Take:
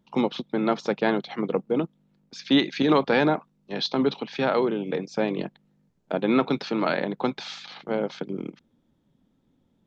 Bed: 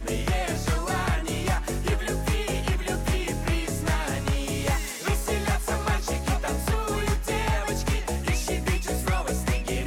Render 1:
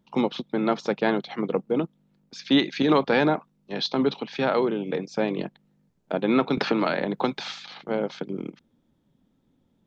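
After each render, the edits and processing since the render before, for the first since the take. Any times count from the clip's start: 6.57–7.52 three-band squash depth 100%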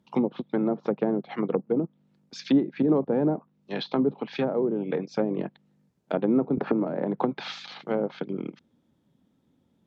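treble ducked by the level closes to 490 Hz, closed at -19.5 dBFS; HPF 68 Hz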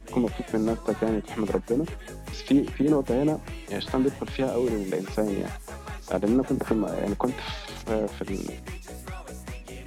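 add bed -12.5 dB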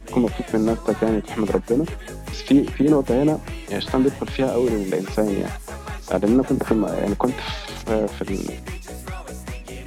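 gain +5.5 dB

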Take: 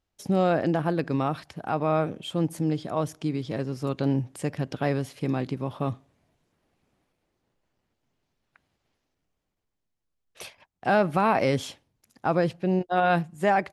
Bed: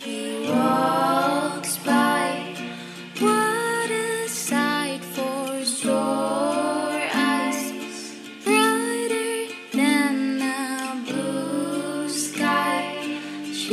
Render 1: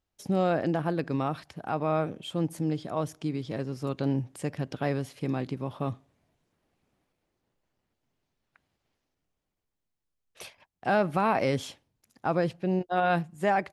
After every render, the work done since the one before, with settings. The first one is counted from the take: gain -3 dB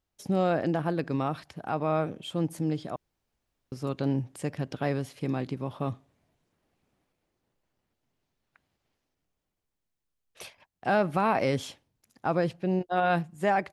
2.96–3.72 room tone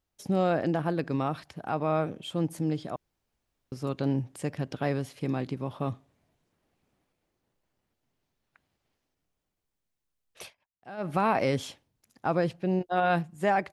10.43–11.11 dip -17.5 dB, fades 0.14 s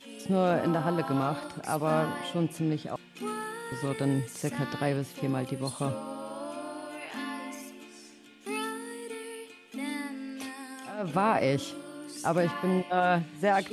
add bed -15.5 dB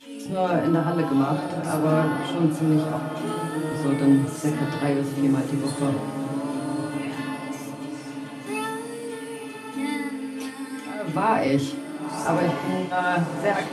diffused feedback echo 1.063 s, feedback 50%, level -7.5 dB; FDN reverb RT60 0.3 s, low-frequency decay 1.3×, high-frequency decay 0.75×, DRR -1 dB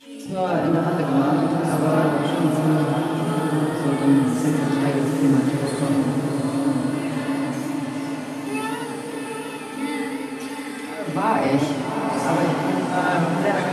on a send: diffused feedback echo 0.756 s, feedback 56%, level -5 dB; on the sum: warbling echo 88 ms, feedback 73%, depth 144 cents, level -7 dB

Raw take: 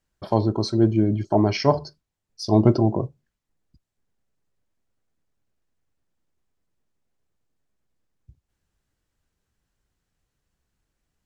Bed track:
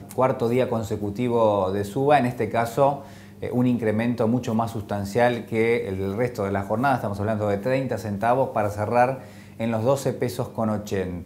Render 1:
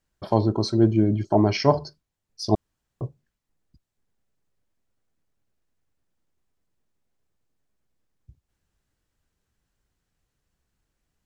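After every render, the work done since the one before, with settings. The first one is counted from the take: 2.55–3.01 room tone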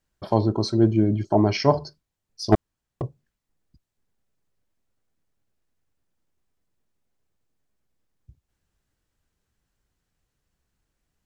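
2.52–3.02 sample leveller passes 2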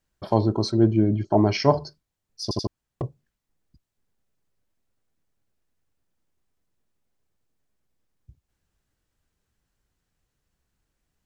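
0.71–1.33 air absorption 97 m; 2.43 stutter in place 0.08 s, 3 plays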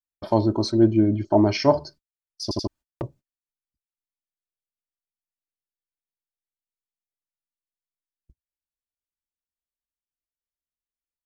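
gate -45 dBFS, range -31 dB; comb 3.3 ms, depth 43%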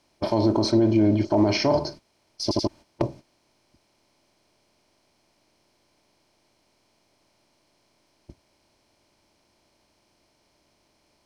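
per-bin compression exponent 0.6; limiter -10.5 dBFS, peak gain reduction 7.5 dB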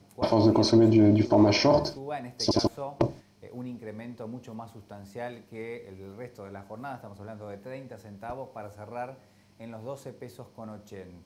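add bed track -17.5 dB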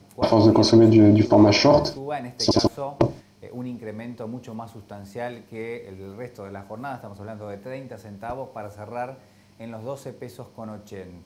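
gain +5.5 dB

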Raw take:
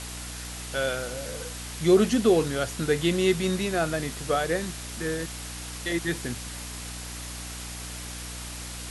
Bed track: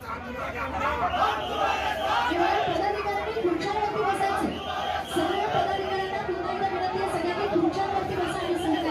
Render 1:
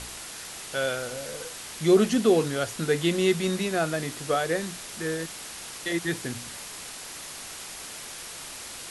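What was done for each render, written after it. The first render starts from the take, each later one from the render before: de-hum 60 Hz, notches 5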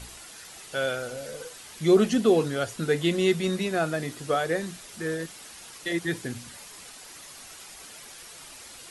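denoiser 8 dB, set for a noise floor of -40 dBFS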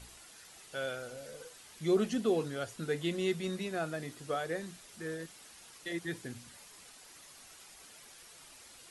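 gain -9.5 dB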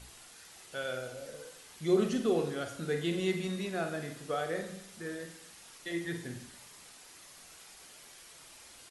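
doubler 47 ms -12 dB; Schroeder reverb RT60 0.77 s, combs from 32 ms, DRR 7 dB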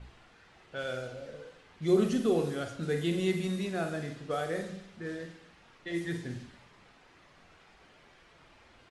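low shelf 230 Hz +6 dB; low-pass opened by the level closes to 2000 Hz, open at -27.5 dBFS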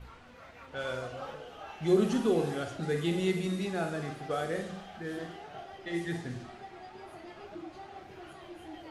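add bed track -20.5 dB

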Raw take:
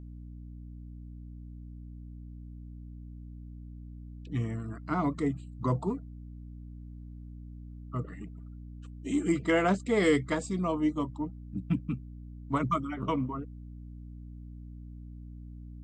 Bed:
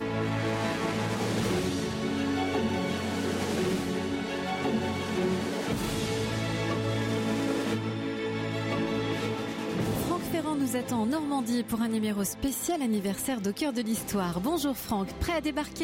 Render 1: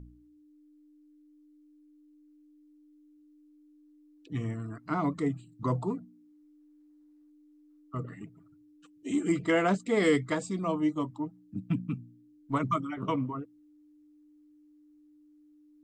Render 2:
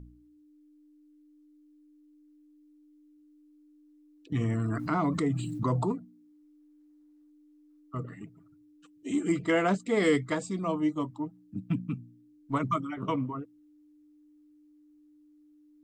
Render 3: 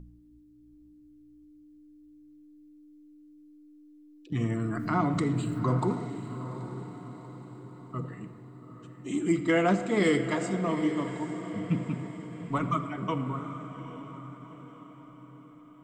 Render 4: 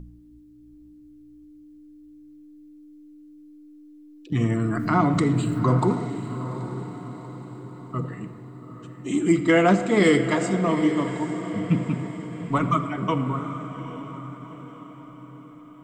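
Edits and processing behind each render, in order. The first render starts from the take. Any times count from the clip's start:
de-hum 60 Hz, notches 4
4.32–5.92 fast leveller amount 70%
diffused feedback echo 0.817 s, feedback 47%, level -11 dB; shoebox room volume 3500 m³, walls mixed, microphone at 0.94 m
gain +6.5 dB

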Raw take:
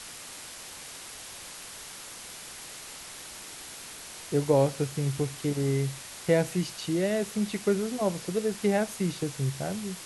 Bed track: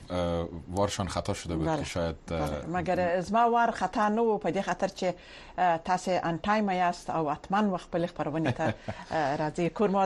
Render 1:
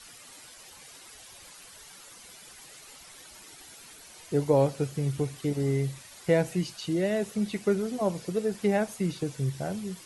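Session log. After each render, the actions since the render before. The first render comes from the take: denoiser 11 dB, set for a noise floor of -44 dBFS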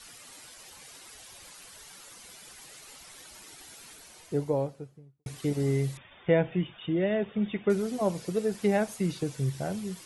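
3.88–5.26 studio fade out; 5.97–7.7 brick-wall FIR low-pass 3700 Hz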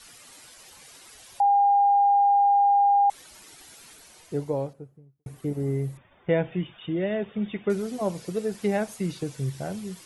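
1.4–3.1 bleep 806 Hz -16 dBFS; 4.73–6.29 bell 4500 Hz -14 dB 2.5 oct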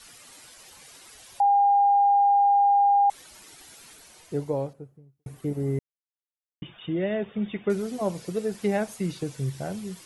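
5.79–6.62 mute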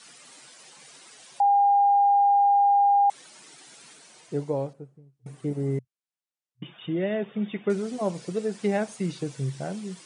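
FFT band-pass 120–10000 Hz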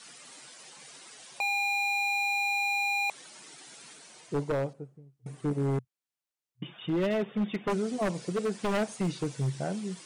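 wavefolder -22.5 dBFS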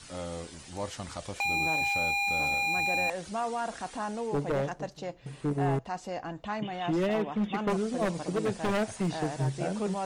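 add bed track -8.5 dB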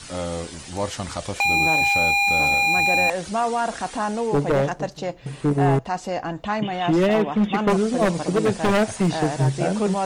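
gain +9.5 dB

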